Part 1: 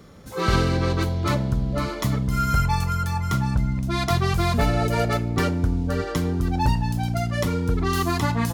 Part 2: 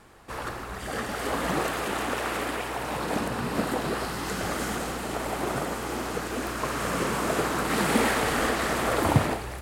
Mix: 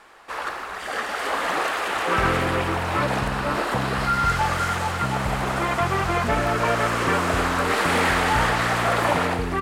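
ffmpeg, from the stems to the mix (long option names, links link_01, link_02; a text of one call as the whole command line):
ffmpeg -i stem1.wav -i stem2.wav -filter_complex "[0:a]afwtdn=0.0316,adelay=1700,volume=-1.5dB[link_01];[1:a]equalizer=frequency=100:width=0.32:gain=-11.5,volume=2.5dB[link_02];[link_01][link_02]amix=inputs=2:normalize=0,asplit=2[link_03][link_04];[link_04]highpass=frequency=720:poles=1,volume=11dB,asoftclip=type=tanh:threshold=-8dB[link_05];[link_03][link_05]amix=inputs=2:normalize=0,lowpass=frequency=2800:poles=1,volume=-6dB" out.wav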